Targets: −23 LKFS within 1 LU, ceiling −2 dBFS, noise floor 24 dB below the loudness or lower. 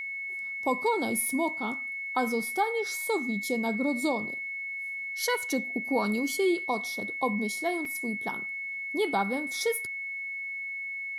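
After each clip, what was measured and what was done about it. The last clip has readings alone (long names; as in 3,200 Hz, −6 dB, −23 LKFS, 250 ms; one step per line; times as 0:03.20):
number of dropouts 1; longest dropout 3.4 ms; interfering tone 2,200 Hz; level of the tone −33 dBFS; integrated loudness −29.5 LKFS; sample peak −14.5 dBFS; target loudness −23.0 LKFS
→ repair the gap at 0:07.85, 3.4 ms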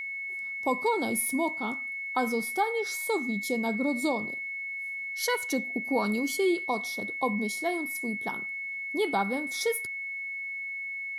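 number of dropouts 0; interfering tone 2,200 Hz; level of the tone −33 dBFS
→ notch filter 2,200 Hz, Q 30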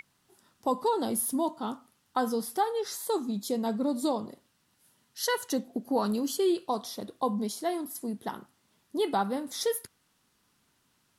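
interfering tone none found; integrated loudness −31.0 LKFS; sample peak −15.5 dBFS; target loudness −23.0 LKFS
→ level +8 dB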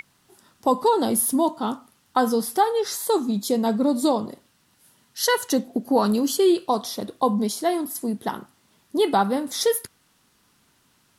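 integrated loudness −23.0 LKFS; sample peak −7.5 dBFS; background noise floor −63 dBFS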